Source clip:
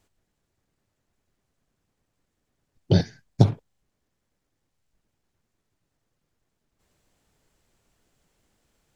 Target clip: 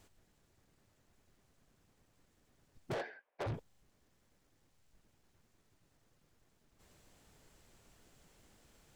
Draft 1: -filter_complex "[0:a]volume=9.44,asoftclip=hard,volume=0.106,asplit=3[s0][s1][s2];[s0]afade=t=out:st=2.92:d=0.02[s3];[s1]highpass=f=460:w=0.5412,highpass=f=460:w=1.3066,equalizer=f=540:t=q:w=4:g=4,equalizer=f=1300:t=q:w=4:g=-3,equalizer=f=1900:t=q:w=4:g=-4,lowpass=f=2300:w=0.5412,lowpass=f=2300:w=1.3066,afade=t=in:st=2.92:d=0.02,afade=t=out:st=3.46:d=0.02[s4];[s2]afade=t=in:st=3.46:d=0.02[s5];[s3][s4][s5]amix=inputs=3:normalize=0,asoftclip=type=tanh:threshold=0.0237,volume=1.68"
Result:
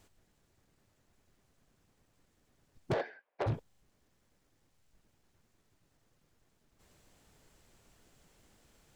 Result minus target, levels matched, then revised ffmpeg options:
saturation: distortion -4 dB
-filter_complex "[0:a]volume=9.44,asoftclip=hard,volume=0.106,asplit=3[s0][s1][s2];[s0]afade=t=out:st=2.92:d=0.02[s3];[s1]highpass=f=460:w=0.5412,highpass=f=460:w=1.3066,equalizer=f=540:t=q:w=4:g=4,equalizer=f=1300:t=q:w=4:g=-3,equalizer=f=1900:t=q:w=4:g=-4,lowpass=f=2300:w=0.5412,lowpass=f=2300:w=1.3066,afade=t=in:st=2.92:d=0.02,afade=t=out:st=3.46:d=0.02[s4];[s2]afade=t=in:st=3.46:d=0.02[s5];[s3][s4][s5]amix=inputs=3:normalize=0,asoftclip=type=tanh:threshold=0.00944,volume=1.68"

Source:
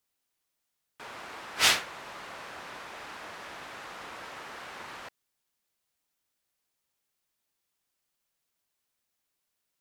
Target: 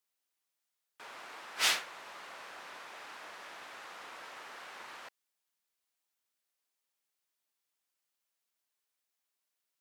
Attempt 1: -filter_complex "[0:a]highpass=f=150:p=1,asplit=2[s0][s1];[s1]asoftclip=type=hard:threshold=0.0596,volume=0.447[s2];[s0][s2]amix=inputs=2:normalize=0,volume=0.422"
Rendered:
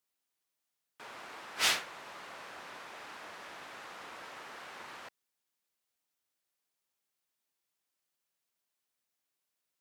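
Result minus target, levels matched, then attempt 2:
125 Hz band +7.0 dB
-filter_complex "[0:a]highpass=f=470:p=1,asplit=2[s0][s1];[s1]asoftclip=type=hard:threshold=0.0596,volume=0.447[s2];[s0][s2]amix=inputs=2:normalize=0,volume=0.422"

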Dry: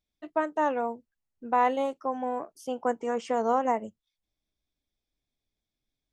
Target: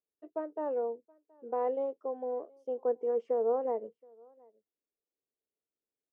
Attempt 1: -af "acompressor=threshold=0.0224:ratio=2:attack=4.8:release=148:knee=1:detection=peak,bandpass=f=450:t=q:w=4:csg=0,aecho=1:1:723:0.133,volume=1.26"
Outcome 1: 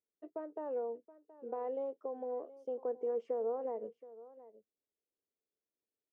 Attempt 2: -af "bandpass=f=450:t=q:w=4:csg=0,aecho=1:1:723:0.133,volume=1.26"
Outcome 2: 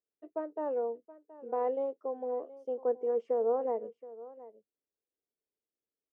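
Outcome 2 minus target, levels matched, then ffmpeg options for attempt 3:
echo-to-direct +10 dB
-af "bandpass=f=450:t=q:w=4:csg=0,aecho=1:1:723:0.0422,volume=1.26"

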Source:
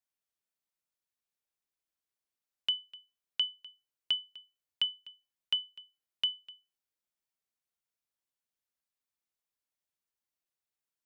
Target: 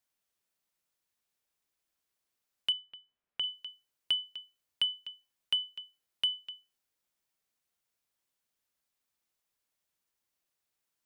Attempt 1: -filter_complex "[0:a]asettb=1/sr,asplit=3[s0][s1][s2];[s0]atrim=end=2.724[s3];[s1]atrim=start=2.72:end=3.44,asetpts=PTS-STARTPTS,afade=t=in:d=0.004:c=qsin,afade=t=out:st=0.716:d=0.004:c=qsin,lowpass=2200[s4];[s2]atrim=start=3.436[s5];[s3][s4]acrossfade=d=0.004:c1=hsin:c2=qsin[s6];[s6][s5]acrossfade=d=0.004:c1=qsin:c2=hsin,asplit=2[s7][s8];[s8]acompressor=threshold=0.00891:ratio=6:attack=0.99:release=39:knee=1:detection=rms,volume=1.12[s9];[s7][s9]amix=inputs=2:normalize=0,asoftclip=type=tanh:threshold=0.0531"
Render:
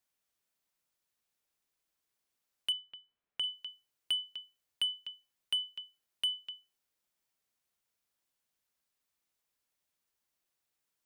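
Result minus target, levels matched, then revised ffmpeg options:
saturation: distortion +11 dB
-filter_complex "[0:a]asettb=1/sr,asplit=3[s0][s1][s2];[s0]atrim=end=2.724[s3];[s1]atrim=start=2.72:end=3.44,asetpts=PTS-STARTPTS,afade=t=in:d=0.004:c=qsin,afade=t=out:st=0.716:d=0.004:c=qsin,lowpass=2200[s4];[s2]atrim=start=3.436[s5];[s3][s4]acrossfade=d=0.004:c1=hsin:c2=qsin[s6];[s6][s5]acrossfade=d=0.004:c1=qsin:c2=hsin,asplit=2[s7][s8];[s8]acompressor=threshold=0.00891:ratio=6:attack=0.99:release=39:knee=1:detection=rms,volume=1.12[s9];[s7][s9]amix=inputs=2:normalize=0,asoftclip=type=tanh:threshold=0.126"

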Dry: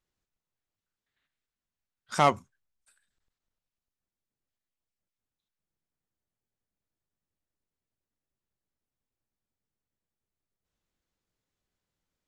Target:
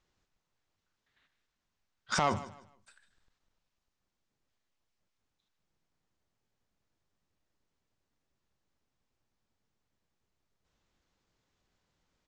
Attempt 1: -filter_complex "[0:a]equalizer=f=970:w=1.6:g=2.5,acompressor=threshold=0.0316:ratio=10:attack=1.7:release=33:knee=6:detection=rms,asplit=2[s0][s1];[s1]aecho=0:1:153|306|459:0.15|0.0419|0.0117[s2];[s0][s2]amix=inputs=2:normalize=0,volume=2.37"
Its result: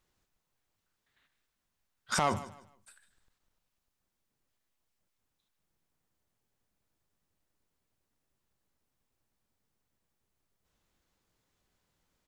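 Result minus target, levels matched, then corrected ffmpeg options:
8 kHz band +2.5 dB
-filter_complex "[0:a]lowpass=f=7000:w=0.5412,lowpass=f=7000:w=1.3066,equalizer=f=970:w=1.6:g=2.5,acompressor=threshold=0.0316:ratio=10:attack=1.7:release=33:knee=6:detection=rms,asplit=2[s0][s1];[s1]aecho=0:1:153|306|459:0.15|0.0419|0.0117[s2];[s0][s2]amix=inputs=2:normalize=0,volume=2.37"

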